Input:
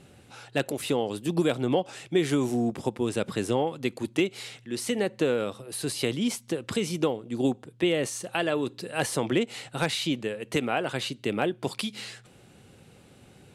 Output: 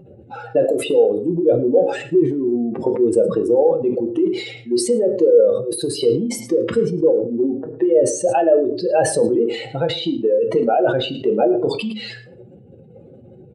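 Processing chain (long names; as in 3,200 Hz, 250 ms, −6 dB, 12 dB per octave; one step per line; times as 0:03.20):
expanding power law on the bin magnitudes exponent 2.5
in parallel at +1 dB: brickwall limiter −23.5 dBFS, peak gain reduction 9 dB
on the sum: single-tap delay 109 ms −20 dB
downward compressor, threshold −24 dBFS, peak gain reduction 8 dB
parametric band 540 Hz +14.5 dB 1.5 octaves
mains-hum notches 50/100/150/200/250/300/350/400/450 Hz
on a send at −6.5 dB: linear-phase brick-wall band-pass 220–9,300 Hz + convolution reverb RT60 0.45 s, pre-delay 5 ms
on the sum: level that may fall only so fast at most 82 dB per second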